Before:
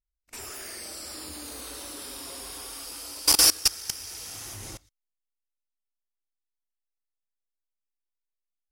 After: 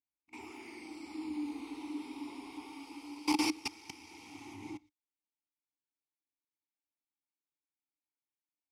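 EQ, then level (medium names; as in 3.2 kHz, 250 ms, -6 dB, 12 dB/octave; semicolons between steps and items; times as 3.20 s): vowel filter u; high-pass 60 Hz; peaking EQ 81 Hz +4.5 dB 2.2 oct; +9.5 dB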